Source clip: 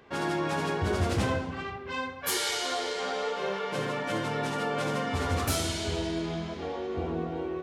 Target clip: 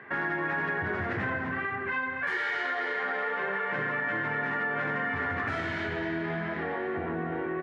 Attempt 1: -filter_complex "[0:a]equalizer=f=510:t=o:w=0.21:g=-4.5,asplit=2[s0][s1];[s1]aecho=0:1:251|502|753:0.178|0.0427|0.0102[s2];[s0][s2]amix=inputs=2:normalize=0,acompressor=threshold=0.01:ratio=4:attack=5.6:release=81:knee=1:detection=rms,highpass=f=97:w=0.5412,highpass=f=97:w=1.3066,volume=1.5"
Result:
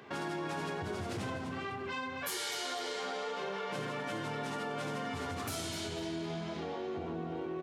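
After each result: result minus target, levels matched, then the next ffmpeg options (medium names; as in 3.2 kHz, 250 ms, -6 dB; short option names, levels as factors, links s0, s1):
2 kHz band -6.5 dB; compression: peak gain reduction +5 dB
-filter_complex "[0:a]lowpass=f=1800:t=q:w=6.2,equalizer=f=510:t=o:w=0.21:g=-4.5,asplit=2[s0][s1];[s1]aecho=0:1:251|502|753:0.178|0.0427|0.0102[s2];[s0][s2]amix=inputs=2:normalize=0,acompressor=threshold=0.01:ratio=4:attack=5.6:release=81:knee=1:detection=rms,highpass=f=97:w=0.5412,highpass=f=97:w=1.3066,volume=1.5"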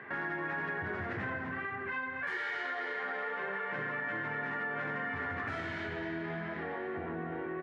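compression: peak gain reduction +6 dB
-filter_complex "[0:a]lowpass=f=1800:t=q:w=6.2,equalizer=f=510:t=o:w=0.21:g=-4.5,asplit=2[s0][s1];[s1]aecho=0:1:251|502|753:0.178|0.0427|0.0102[s2];[s0][s2]amix=inputs=2:normalize=0,acompressor=threshold=0.0251:ratio=4:attack=5.6:release=81:knee=1:detection=rms,highpass=f=97:w=0.5412,highpass=f=97:w=1.3066,volume=1.5"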